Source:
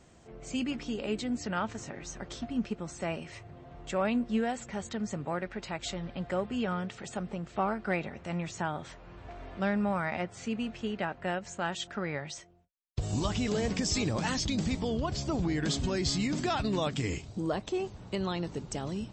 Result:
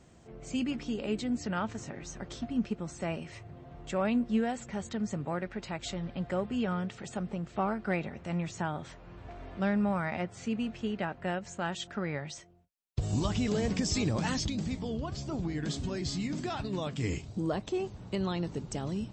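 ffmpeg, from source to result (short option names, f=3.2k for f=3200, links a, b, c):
-filter_complex "[0:a]asplit=3[a][b][c];[a]afade=t=out:st=14.48:d=0.02[d];[b]flanger=delay=6.6:depth=7.9:regen=-76:speed=1.5:shape=triangular,afade=t=in:st=14.48:d=0.02,afade=t=out:st=17:d=0.02[e];[c]afade=t=in:st=17:d=0.02[f];[d][e][f]amix=inputs=3:normalize=0,equalizer=f=140:t=o:w=2.7:g=4,volume=-2dB"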